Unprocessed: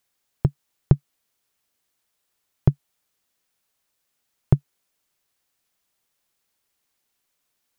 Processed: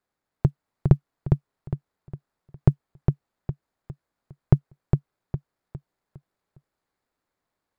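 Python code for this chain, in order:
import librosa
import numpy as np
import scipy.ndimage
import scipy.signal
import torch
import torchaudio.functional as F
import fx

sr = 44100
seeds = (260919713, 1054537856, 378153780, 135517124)

y = scipy.ndimage.median_filter(x, 15, mode='constant')
y = fx.echo_feedback(y, sr, ms=408, feedback_pct=37, wet_db=-4)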